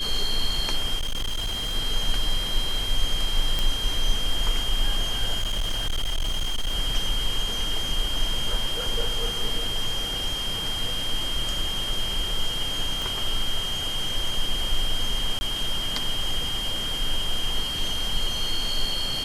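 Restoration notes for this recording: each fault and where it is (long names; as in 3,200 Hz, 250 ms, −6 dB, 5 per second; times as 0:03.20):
whistle 3,200 Hz −28 dBFS
0:00.98–0:01.76: clipping −23.5 dBFS
0:03.59: click
0:05.39–0:06.75: clipping −21.5 dBFS
0:13.02: click
0:15.39–0:15.41: drop-out 20 ms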